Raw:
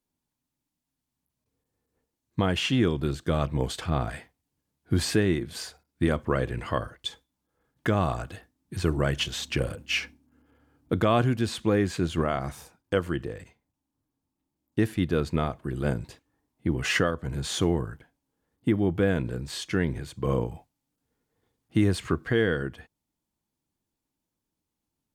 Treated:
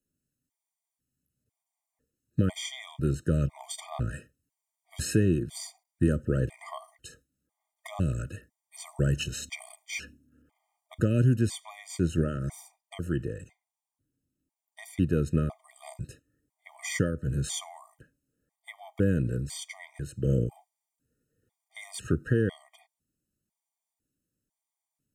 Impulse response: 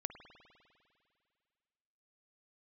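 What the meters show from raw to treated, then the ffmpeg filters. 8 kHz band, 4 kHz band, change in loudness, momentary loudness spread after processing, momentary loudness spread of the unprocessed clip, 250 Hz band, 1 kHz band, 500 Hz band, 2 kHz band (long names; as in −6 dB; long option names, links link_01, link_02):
+0.5 dB, −8.0 dB, −2.5 dB, 20 LU, 12 LU, −3.0 dB, −12.5 dB, −6.0 dB, −8.0 dB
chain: -filter_complex "[0:a]equalizer=frequency=125:width_type=o:width=1:gain=4,equalizer=frequency=1000:width_type=o:width=1:gain=-5,equalizer=frequency=4000:width_type=o:width=1:gain=-6,equalizer=frequency=8000:width_type=o:width=1:gain=6,acrossover=split=400|3000[link_01][link_02][link_03];[link_02]acompressor=threshold=-34dB:ratio=3[link_04];[link_01][link_04][link_03]amix=inputs=3:normalize=0,afftfilt=real='re*gt(sin(2*PI*1*pts/sr)*(1-2*mod(floor(b*sr/1024/620),2)),0)':imag='im*gt(sin(2*PI*1*pts/sr)*(1-2*mod(floor(b*sr/1024/620),2)),0)':win_size=1024:overlap=0.75"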